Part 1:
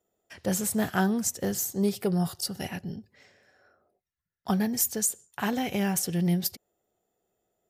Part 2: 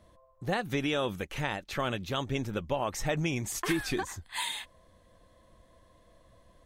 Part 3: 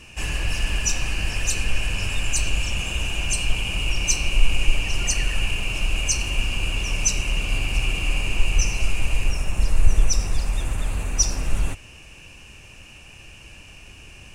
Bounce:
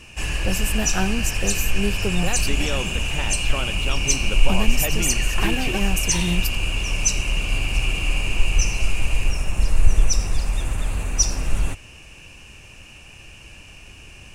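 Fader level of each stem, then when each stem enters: +0.5, +1.0, +1.0 decibels; 0.00, 1.75, 0.00 seconds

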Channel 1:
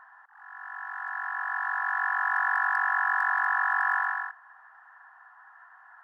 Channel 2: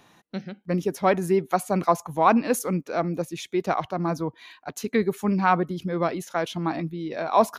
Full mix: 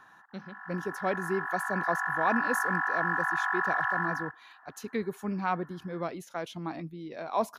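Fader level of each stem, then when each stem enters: −3.5, −9.5 decibels; 0.00, 0.00 seconds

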